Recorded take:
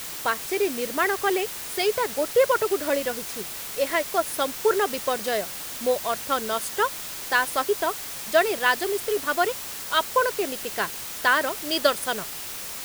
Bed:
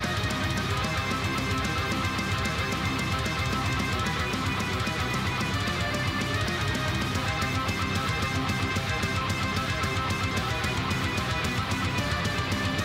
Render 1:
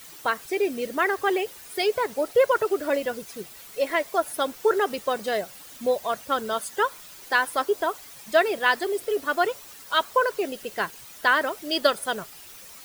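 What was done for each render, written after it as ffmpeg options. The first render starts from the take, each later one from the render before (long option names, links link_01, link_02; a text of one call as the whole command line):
ffmpeg -i in.wav -af "afftdn=noise_reduction=12:noise_floor=-35" out.wav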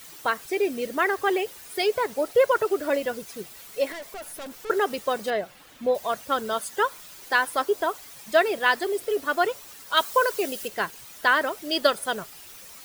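ffmpeg -i in.wav -filter_complex "[0:a]asettb=1/sr,asplit=3[link_01][link_02][link_03];[link_01]atrim=end=3.924[link_04];[link_02]atrim=start=3.92:end=4.7,asetpts=PTS-STARTPTS,afade=type=in:duration=0.004:curve=qsin,afade=type=out:start_time=0.776:duration=0.004:curve=qsin,aeval=exprs='(tanh(56.2*val(0)+0.15)-tanh(0.15))/56.2':channel_layout=same[link_05];[link_03]atrim=start=4.696[link_06];[link_04][link_05]acrossfade=duration=0.004:curve1=hsin:curve2=qsin[link_07];[link_07][link_06]acrossfade=duration=0.004:curve1=qsin:curve2=hsin,asettb=1/sr,asplit=3[link_08][link_09][link_10];[link_08]atrim=end=5.304[link_11];[link_09]atrim=start=5.3:end=5.95,asetpts=PTS-STARTPTS,afade=type=in:duration=0.004:curve=qsin,afade=type=out:start_time=0.646:duration=0.004:curve=qsin,acrossover=split=3600[link_12][link_13];[link_13]acompressor=threshold=-54dB:ratio=4:attack=1:release=60[link_14];[link_12][link_14]amix=inputs=2:normalize=0[link_15];[link_10]atrim=start=5.946[link_16];[link_11][link_15]acrossfade=duration=0.004:curve1=hsin:curve2=qsin[link_17];[link_17][link_16]acrossfade=duration=0.004:curve1=qsin:curve2=hsin,asettb=1/sr,asplit=3[link_18][link_19][link_20];[link_18]atrim=end=9.974[link_21];[link_19]atrim=start=9.97:end=10.68,asetpts=PTS-STARTPTS,afade=type=in:duration=0.004:curve=qsin,afade=type=out:start_time=0.706:duration=0.004:curve=qsin,highshelf=frequency=3900:gain=9[link_22];[link_20]atrim=start=10.676[link_23];[link_21][link_22]acrossfade=duration=0.004:curve1=hsin:curve2=qsin[link_24];[link_24][link_23]acrossfade=duration=0.004:curve1=qsin:curve2=hsin" out.wav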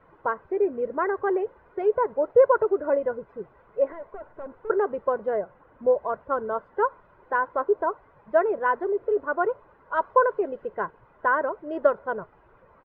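ffmpeg -i in.wav -af "lowpass=frequency=1300:width=0.5412,lowpass=frequency=1300:width=1.3066,aecho=1:1:2:0.39" out.wav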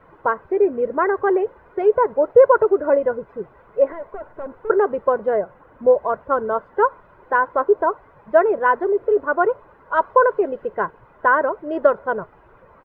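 ffmpeg -i in.wav -af "volume=6.5dB,alimiter=limit=-3dB:level=0:latency=1" out.wav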